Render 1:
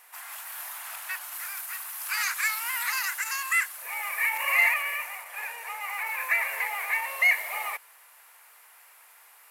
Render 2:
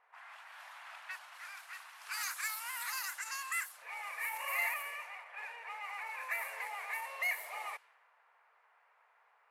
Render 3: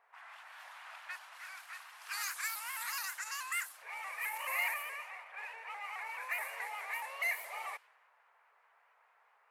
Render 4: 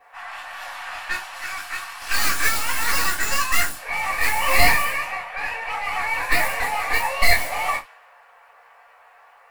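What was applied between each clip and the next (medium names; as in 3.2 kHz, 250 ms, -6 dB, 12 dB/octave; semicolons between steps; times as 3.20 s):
dynamic bell 2.2 kHz, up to -6 dB, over -36 dBFS, Q 1.3; level-controlled noise filter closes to 1.3 kHz, open at -27 dBFS; trim -7.5 dB
vibrato with a chosen wave saw up 4.7 Hz, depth 100 cents
tracing distortion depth 0.15 ms; reverberation, pre-delay 4 ms, DRR -6.5 dB; trim +8 dB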